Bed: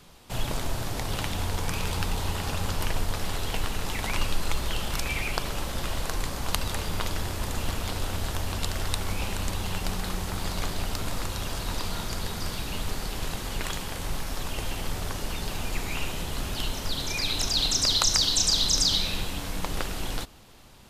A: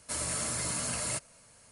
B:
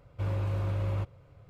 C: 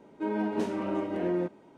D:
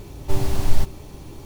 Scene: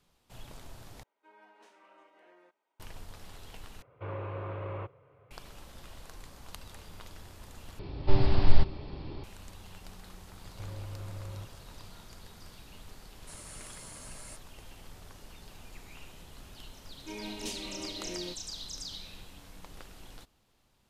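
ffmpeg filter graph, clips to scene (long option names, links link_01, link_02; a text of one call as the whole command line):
ffmpeg -i bed.wav -i cue0.wav -i cue1.wav -i cue2.wav -i cue3.wav -filter_complex "[3:a]asplit=2[link_01][link_02];[2:a]asplit=2[link_03][link_04];[0:a]volume=-18.5dB[link_05];[link_01]highpass=990[link_06];[link_03]highpass=160,equalizer=frequency=180:width_type=q:width=4:gain=-9,equalizer=frequency=270:width_type=q:width=4:gain=-5,equalizer=frequency=430:width_type=q:width=4:gain=6,equalizer=frequency=1100:width_type=q:width=4:gain=5,lowpass=frequency=2800:width=0.5412,lowpass=frequency=2800:width=1.3066[link_07];[4:a]aresample=11025,aresample=44100[link_08];[link_04]acompressor=threshold=-38dB:ratio=6:attack=3.2:release=140:knee=1:detection=peak[link_09];[link_02]aexciter=amount=14.5:drive=2.8:freq=2300[link_10];[link_05]asplit=4[link_11][link_12][link_13][link_14];[link_11]atrim=end=1.034[link_15];[link_06]atrim=end=1.77,asetpts=PTS-STARTPTS,volume=-17.5dB[link_16];[link_12]atrim=start=2.796:end=3.824[link_17];[link_07]atrim=end=1.49,asetpts=PTS-STARTPTS,volume=-1dB[link_18];[link_13]atrim=start=5.306:end=7.794[link_19];[link_08]atrim=end=1.45,asetpts=PTS-STARTPTS,volume=-2dB[link_20];[link_14]atrim=start=9.236[link_21];[link_09]atrim=end=1.49,asetpts=PTS-STARTPTS,volume=-1.5dB,afade=type=in:duration=0.004:curve=hsin,afade=type=out:start_time=1.486:duration=0.004:curve=hsin,adelay=10410[link_22];[1:a]atrim=end=1.71,asetpts=PTS-STARTPTS,volume=-15dB,afade=type=in:duration=0.004:curve=hsin,afade=type=out:start_time=1.706:duration=0.004:curve=hsin,adelay=13180[link_23];[link_10]atrim=end=1.77,asetpts=PTS-STARTPTS,volume=-12.5dB,afade=type=in:duration=0.004:curve=hsin,afade=type=out:start_time=1.766:duration=0.004:curve=hsin,adelay=16860[link_24];[link_15][link_16]acrossfade=duration=0.004:curve1=hsin:curve2=hsin[link_25];[link_25][link_17]acrossfade=duration=0.004:curve1=hsin:curve2=hsin[link_26];[link_26][link_18]acrossfade=duration=0.004:curve1=hsin:curve2=hsin[link_27];[link_27][link_19]acrossfade=duration=0.004:curve1=hsin:curve2=hsin[link_28];[link_28][link_20]acrossfade=duration=0.004:curve1=hsin:curve2=hsin[link_29];[link_29][link_21]acrossfade=duration=0.004:curve1=hsin:curve2=hsin[link_30];[link_30][link_22][link_23][link_24]amix=inputs=4:normalize=0" out.wav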